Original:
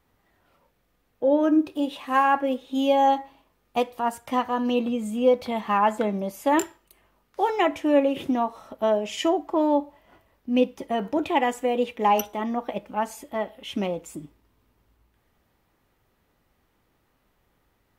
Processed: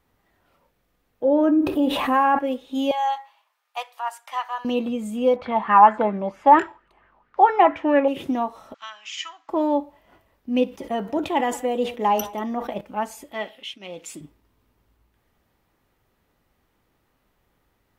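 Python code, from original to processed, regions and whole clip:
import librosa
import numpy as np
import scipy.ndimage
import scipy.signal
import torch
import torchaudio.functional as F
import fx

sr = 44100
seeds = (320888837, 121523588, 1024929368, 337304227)

y = fx.chain(x, sr, fx.peak_eq(hz=5800.0, db=-12.0, octaves=2.5),
    fx.env_flatten(amount_pct=70), at=(1.25, 2.39))
y = fx.chain(y, sr, fx.highpass(hz=810.0, slope=24),
    fx.high_shelf(hz=11000.0, db=-6.5), at=(2.91, 4.65))
y = fx.chain(y, sr, fx.lowpass(hz=2700.0, slope=12),
    fx.bell_lfo(hz=4.4, low_hz=800.0, high_hz=1700.0, db=13), at=(5.36, 8.08))
y = fx.chain(y, sr, fx.ellip_bandpass(low_hz=1200.0, high_hz=6700.0, order=3, stop_db=40),
    fx.band_squash(depth_pct=40), at=(8.74, 9.49))
y = fx.chain(y, sr, fx.dynamic_eq(hz=2400.0, q=4.2, threshold_db=-48.0, ratio=4.0, max_db=-6),
    fx.echo_single(ms=186, db=-22.5),
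    fx.sustainer(db_per_s=140.0), at=(10.64, 12.81))
y = fx.chain(y, sr, fx.weighting(curve='D'),
    fx.tremolo_shape(shape='triangle', hz=1.6, depth_pct=95), at=(13.32, 14.21))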